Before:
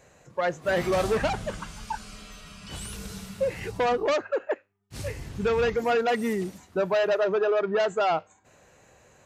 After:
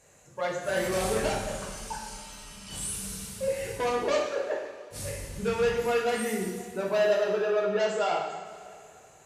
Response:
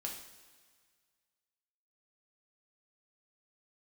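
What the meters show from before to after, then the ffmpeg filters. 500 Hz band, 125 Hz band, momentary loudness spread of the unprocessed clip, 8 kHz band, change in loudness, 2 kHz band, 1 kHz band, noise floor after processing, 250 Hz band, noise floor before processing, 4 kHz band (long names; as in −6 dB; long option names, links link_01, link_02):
−2.0 dB, −3.0 dB, 14 LU, +7.0 dB, −2.0 dB, −2.0 dB, −3.5 dB, −54 dBFS, −3.0 dB, −59 dBFS, 0.0 dB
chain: -filter_complex "[0:a]equalizer=frequency=10000:width_type=o:width=1.3:gain=13[link_01];[1:a]atrim=start_sample=2205,asetrate=30429,aresample=44100[link_02];[link_01][link_02]afir=irnorm=-1:irlink=0,volume=-5dB"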